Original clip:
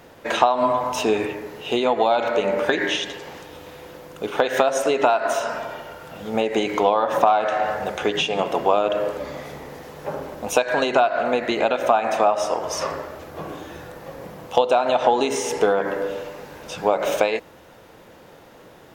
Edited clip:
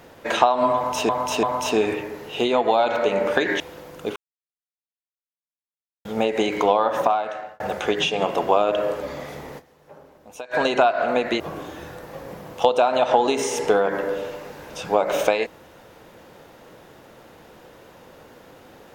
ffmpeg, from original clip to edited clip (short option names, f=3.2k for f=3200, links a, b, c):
-filter_complex "[0:a]asplit=10[a][b][c][d][e][f][g][h][i][j];[a]atrim=end=1.092[k];[b]atrim=start=0.748:end=1.092[l];[c]atrim=start=0.748:end=2.922[m];[d]atrim=start=3.768:end=4.33,asetpts=PTS-STARTPTS,afade=t=out:st=0.558:d=0.004:c=hsin[n];[e]atrim=start=4.33:end=6.22,asetpts=PTS-STARTPTS,volume=0[o];[f]atrim=start=6.22:end=7.77,asetpts=PTS-STARTPTS,afade=t=in:d=0.004:c=hsin,afade=t=out:st=0.81:d=0.74[p];[g]atrim=start=7.77:end=9.9,asetpts=PTS-STARTPTS,afade=t=in:d=0.004:c=hsin,afade=t=out:st=1.98:d=0.15:c=exp:silence=0.141254[q];[h]atrim=start=9.9:end=10.56,asetpts=PTS-STARTPTS,volume=-17dB[r];[i]atrim=start=10.56:end=11.572,asetpts=PTS-STARTPTS,afade=t=in:d=0.15:c=exp:silence=0.141254[s];[j]atrim=start=13.328[t];[k][l]acrossfade=d=0.004:c1=hsin:c2=hsin[u];[u][m]acrossfade=d=0.004:c1=hsin:c2=hsin[v];[n][o][p][q][r][s]concat=n=6:v=0:a=1[w];[v][w]acrossfade=d=0.004:c1=hsin:c2=hsin[x];[x][t]acrossfade=d=0.004:c1=hsin:c2=hsin"